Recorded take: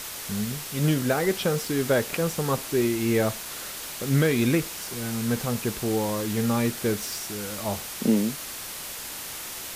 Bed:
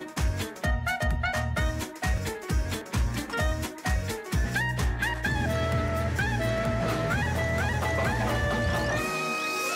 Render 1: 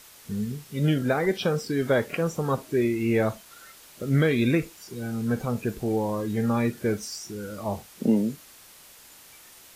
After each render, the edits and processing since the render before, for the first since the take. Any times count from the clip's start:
noise reduction from a noise print 14 dB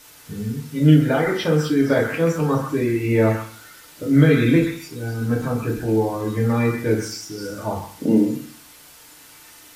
echo through a band-pass that steps 129 ms, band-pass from 1,500 Hz, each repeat 1.4 octaves, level −3 dB
feedback delay network reverb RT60 0.42 s, low-frequency decay 1.3×, high-frequency decay 0.7×, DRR −2 dB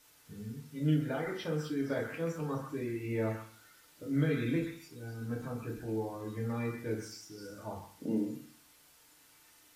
level −16 dB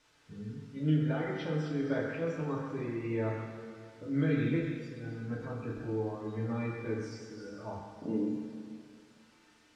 high-frequency loss of the air 110 metres
dense smooth reverb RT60 2.3 s, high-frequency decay 0.9×, DRR 3.5 dB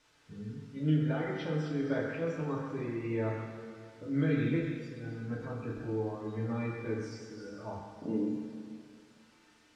no processing that can be heard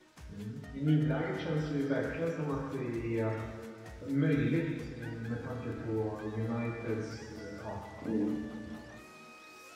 mix in bed −23.5 dB

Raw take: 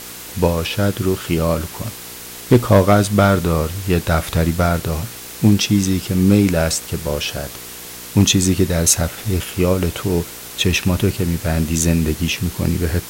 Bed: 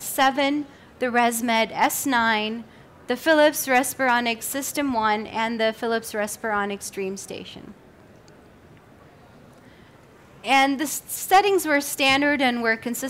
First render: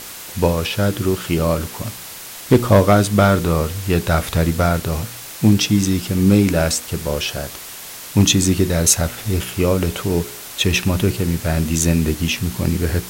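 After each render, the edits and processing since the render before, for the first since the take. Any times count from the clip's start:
hum removal 60 Hz, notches 8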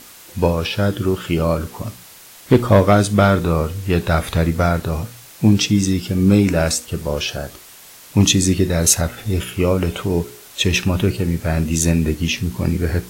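noise reduction from a noise print 8 dB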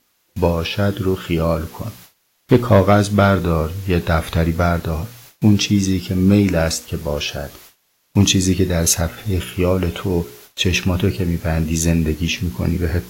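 noise gate with hold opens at −29 dBFS
parametric band 8,600 Hz −8 dB 0.32 octaves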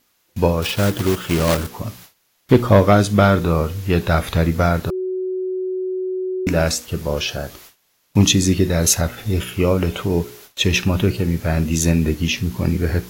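0:00.62–0:01.70: one scale factor per block 3 bits
0:04.90–0:06.47: beep over 372 Hz −20.5 dBFS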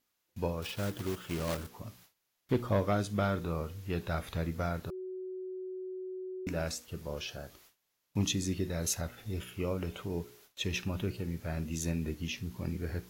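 level −17 dB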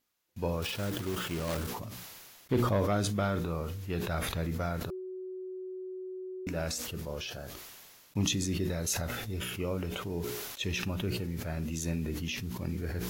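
level that may fall only so fast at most 28 dB per second

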